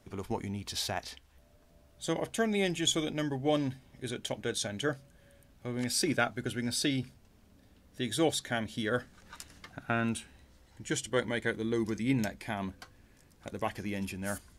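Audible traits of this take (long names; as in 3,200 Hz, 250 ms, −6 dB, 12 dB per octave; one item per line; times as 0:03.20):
background noise floor −63 dBFS
spectral slope −4.0 dB per octave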